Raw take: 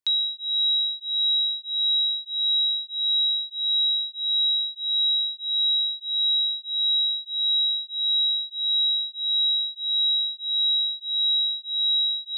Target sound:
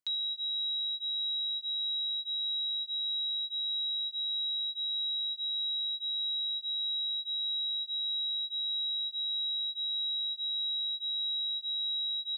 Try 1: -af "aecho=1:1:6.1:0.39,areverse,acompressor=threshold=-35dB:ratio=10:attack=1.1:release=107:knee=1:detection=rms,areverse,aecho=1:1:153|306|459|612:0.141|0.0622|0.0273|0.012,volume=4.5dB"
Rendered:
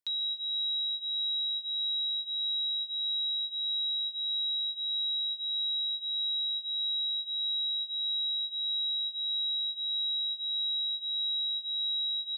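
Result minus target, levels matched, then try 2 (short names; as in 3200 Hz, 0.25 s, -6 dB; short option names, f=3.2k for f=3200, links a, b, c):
echo 70 ms late
-af "aecho=1:1:6.1:0.39,areverse,acompressor=threshold=-35dB:ratio=10:attack=1.1:release=107:knee=1:detection=rms,areverse,aecho=1:1:83|166|249|332:0.141|0.0622|0.0273|0.012,volume=4.5dB"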